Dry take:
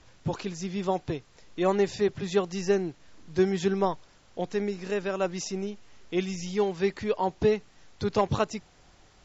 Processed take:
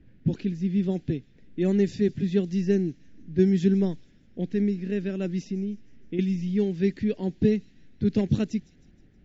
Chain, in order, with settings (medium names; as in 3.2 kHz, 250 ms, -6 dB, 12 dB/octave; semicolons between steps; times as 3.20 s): 5.41–6.19 s: compression, threshold -31 dBFS, peak gain reduction 8.5 dB; level-controlled noise filter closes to 1.7 kHz, open at -19.5 dBFS; FFT filter 100 Hz 0 dB, 240 Hz +8 dB, 1.1 kHz -27 dB, 1.7 kHz -7 dB; feedback echo behind a high-pass 157 ms, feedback 51%, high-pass 4.7 kHz, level -16 dB; trim +2.5 dB